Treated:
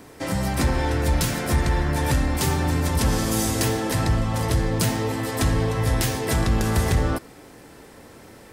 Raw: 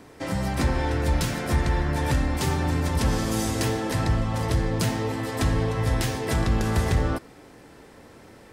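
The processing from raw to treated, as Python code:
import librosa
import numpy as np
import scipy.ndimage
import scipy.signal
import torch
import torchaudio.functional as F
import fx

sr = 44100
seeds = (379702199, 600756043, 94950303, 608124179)

p1 = fx.high_shelf(x, sr, hz=8400.0, db=9.0)
p2 = 10.0 ** (-19.5 / 20.0) * np.tanh(p1 / 10.0 ** (-19.5 / 20.0))
y = p1 + F.gain(torch.from_numpy(p2), -9.5).numpy()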